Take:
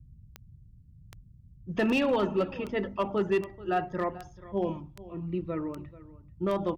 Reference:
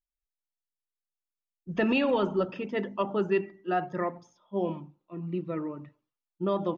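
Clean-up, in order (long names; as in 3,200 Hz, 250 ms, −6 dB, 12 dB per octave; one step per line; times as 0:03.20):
clipped peaks rebuilt −19.5 dBFS
click removal
noise reduction from a noise print 30 dB
echo removal 436 ms −18.5 dB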